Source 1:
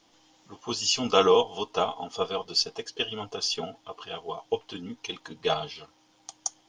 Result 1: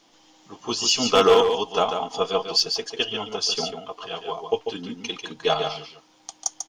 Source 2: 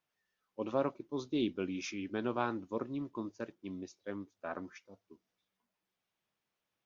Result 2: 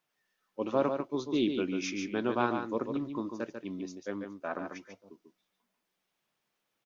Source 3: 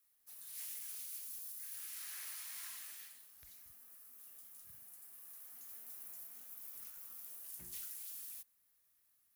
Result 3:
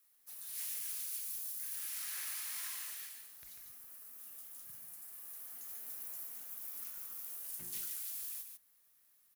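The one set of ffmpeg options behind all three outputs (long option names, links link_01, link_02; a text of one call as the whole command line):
ffmpeg -i in.wav -af "equalizer=frequency=69:width_type=o:width=0.85:gain=-14.5,asoftclip=type=hard:threshold=-14dB,aecho=1:1:144:0.473,volume=4.5dB" out.wav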